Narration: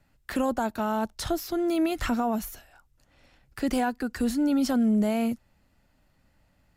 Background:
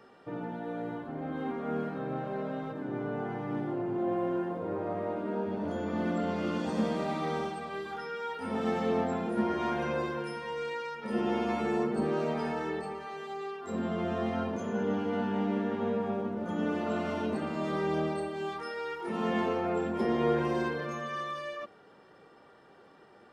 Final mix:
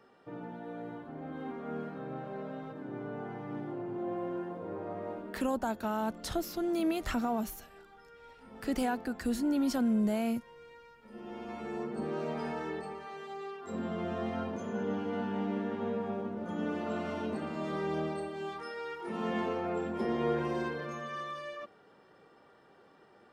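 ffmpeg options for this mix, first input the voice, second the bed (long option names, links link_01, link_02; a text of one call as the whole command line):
ffmpeg -i stem1.wav -i stem2.wav -filter_complex "[0:a]adelay=5050,volume=-5.5dB[link_01];[1:a]volume=9dB,afade=type=out:start_time=5.12:duration=0.33:silence=0.237137,afade=type=in:start_time=11.13:duration=1.34:silence=0.188365[link_02];[link_01][link_02]amix=inputs=2:normalize=0" out.wav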